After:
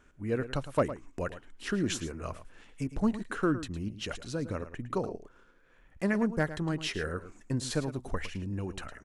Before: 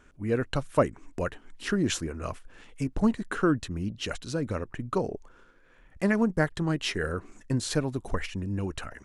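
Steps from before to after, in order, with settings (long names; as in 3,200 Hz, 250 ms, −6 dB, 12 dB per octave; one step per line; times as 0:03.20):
hard clipping −12.5 dBFS, distortion −34 dB
single-tap delay 109 ms −13 dB
level −4 dB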